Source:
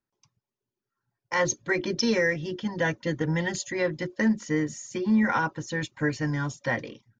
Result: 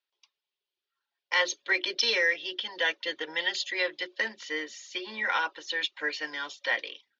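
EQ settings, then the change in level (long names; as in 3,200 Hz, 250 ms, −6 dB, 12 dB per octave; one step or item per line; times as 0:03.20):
high-pass filter 400 Hz 24 dB per octave
low-pass with resonance 4,300 Hz, resonance Q 1.5
parametric band 3,200 Hz +14.5 dB 1.4 octaves
−6.0 dB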